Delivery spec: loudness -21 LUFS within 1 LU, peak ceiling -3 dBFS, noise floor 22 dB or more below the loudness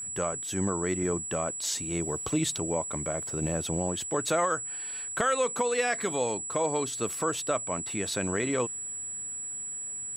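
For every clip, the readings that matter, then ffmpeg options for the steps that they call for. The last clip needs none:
steady tone 7800 Hz; tone level -34 dBFS; loudness -29.5 LUFS; peak -15.5 dBFS; loudness target -21.0 LUFS
-> -af "bandreject=f=7.8k:w=30"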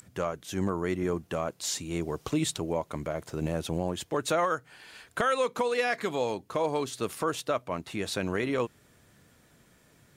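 steady tone none; loudness -31.0 LUFS; peak -16.5 dBFS; loudness target -21.0 LUFS
-> -af "volume=10dB"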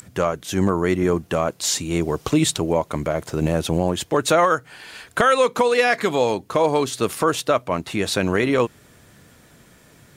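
loudness -21.0 LUFS; peak -6.5 dBFS; noise floor -52 dBFS

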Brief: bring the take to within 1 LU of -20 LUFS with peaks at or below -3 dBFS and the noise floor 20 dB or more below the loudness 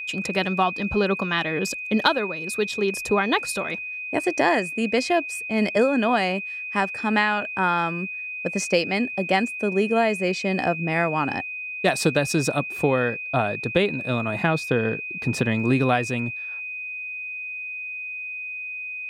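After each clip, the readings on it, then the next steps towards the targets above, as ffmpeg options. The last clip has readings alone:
steady tone 2500 Hz; tone level -30 dBFS; loudness -24.0 LUFS; peak -5.5 dBFS; loudness target -20.0 LUFS
-> -af "bandreject=f=2.5k:w=30"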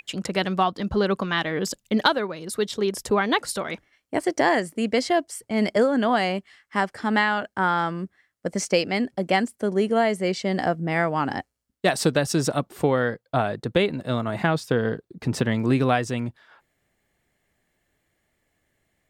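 steady tone none; loudness -24.0 LUFS; peak -5.5 dBFS; loudness target -20.0 LUFS
-> -af "volume=4dB,alimiter=limit=-3dB:level=0:latency=1"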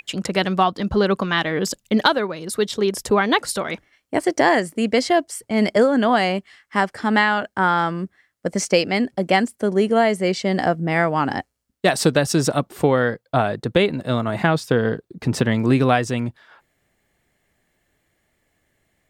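loudness -20.5 LUFS; peak -3.0 dBFS; noise floor -70 dBFS

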